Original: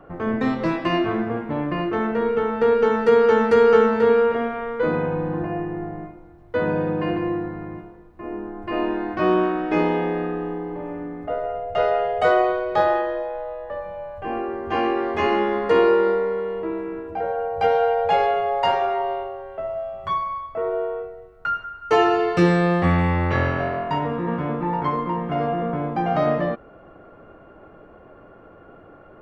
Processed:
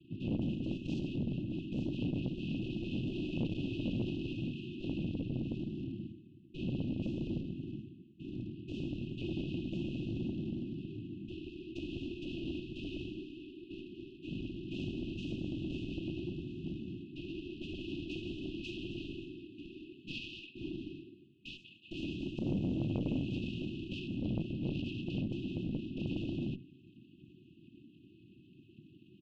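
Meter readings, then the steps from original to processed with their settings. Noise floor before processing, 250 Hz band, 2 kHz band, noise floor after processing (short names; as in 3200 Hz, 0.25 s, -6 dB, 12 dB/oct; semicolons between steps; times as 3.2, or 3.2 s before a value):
-47 dBFS, -11.5 dB, -22.0 dB, -60 dBFS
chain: tilt shelf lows +4 dB, about 830 Hz; comb 5.3 ms, depth 35%; de-hum 146.1 Hz, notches 3; limiter -13 dBFS, peak gain reduction 10 dB; noise vocoder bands 4; one-sided clip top -27.5 dBFS; brick-wall FIR band-stop 380–2500 Hz; air absorption 210 m; core saturation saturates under 290 Hz; gain -7.5 dB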